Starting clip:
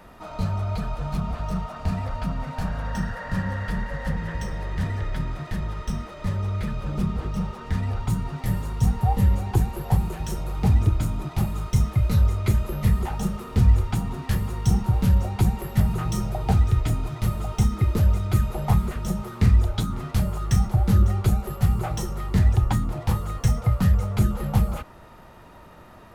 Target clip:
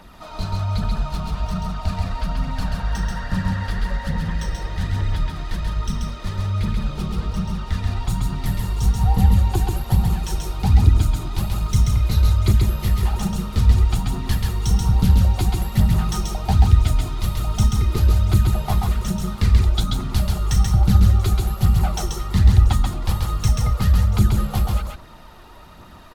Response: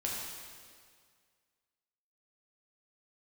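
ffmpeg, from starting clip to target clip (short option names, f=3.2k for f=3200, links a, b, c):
-af "equalizer=f=125:t=o:w=1:g=-5,equalizer=f=500:t=o:w=1:g=-6,equalizer=f=2k:t=o:w=1:g=-3,equalizer=f=4k:t=o:w=1:g=6,aphaser=in_gain=1:out_gain=1:delay=2.9:decay=0.41:speed=1.2:type=triangular,aecho=1:1:134:0.708,volume=2dB"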